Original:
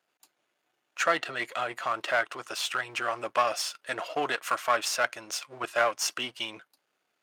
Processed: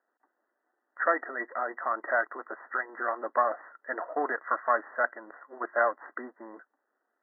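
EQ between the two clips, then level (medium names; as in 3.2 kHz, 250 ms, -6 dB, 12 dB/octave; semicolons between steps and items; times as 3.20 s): brick-wall FIR band-pass 210–2000 Hz; 0.0 dB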